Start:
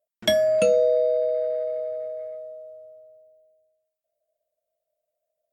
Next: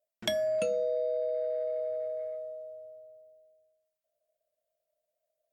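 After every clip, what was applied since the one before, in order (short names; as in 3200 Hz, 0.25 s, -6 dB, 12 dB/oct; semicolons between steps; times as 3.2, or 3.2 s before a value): de-hum 65.98 Hz, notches 22; compressor 3:1, threshold -28 dBFS, peak gain reduction 9.5 dB; gain -2 dB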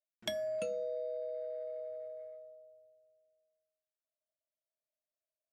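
upward expander 1.5:1, over -50 dBFS; gain -6 dB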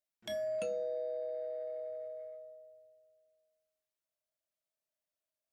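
transient shaper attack -9 dB, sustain +3 dB; gain +1 dB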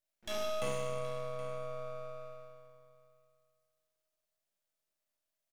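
spectral trails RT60 1.59 s; tapped delay 49/72/772 ms -9/-8/-15.5 dB; half-wave rectifier; gain +3 dB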